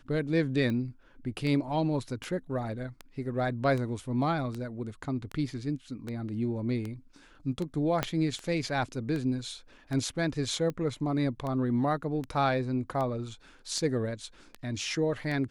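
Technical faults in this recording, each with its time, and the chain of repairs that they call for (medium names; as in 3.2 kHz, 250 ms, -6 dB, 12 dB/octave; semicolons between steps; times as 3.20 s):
tick 78 rpm -23 dBFS
8.03 s: pop -12 dBFS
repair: de-click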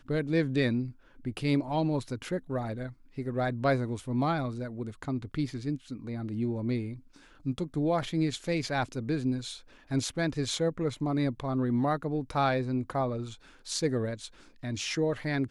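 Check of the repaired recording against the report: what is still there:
8.03 s: pop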